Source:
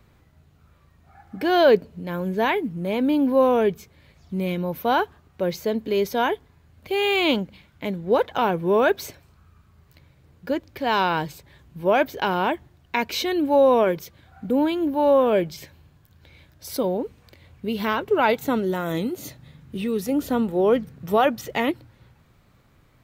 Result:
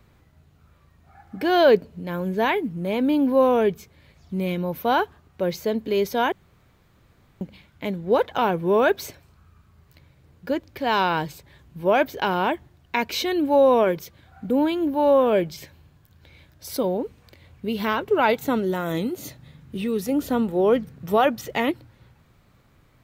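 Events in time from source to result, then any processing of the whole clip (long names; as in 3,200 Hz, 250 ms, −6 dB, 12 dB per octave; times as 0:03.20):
0:06.32–0:07.41: fill with room tone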